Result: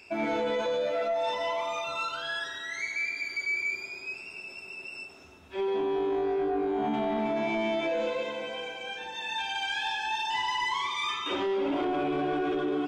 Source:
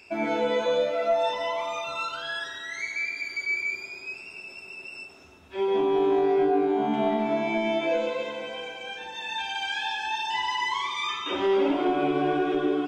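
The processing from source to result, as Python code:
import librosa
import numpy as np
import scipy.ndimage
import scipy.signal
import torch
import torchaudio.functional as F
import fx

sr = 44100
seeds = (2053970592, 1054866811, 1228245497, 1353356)

p1 = fx.over_compress(x, sr, threshold_db=-26.0, ratio=-0.5)
p2 = x + (p1 * librosa.db_to_amplitude(-2.0))
p3 = 10.0 ** (-14.5 / 20.0) * np.tanh(p2 / 10.0 ** (-14.5 / 20.0))
y = p3 * librosa.db_to_amplitude(-6.5)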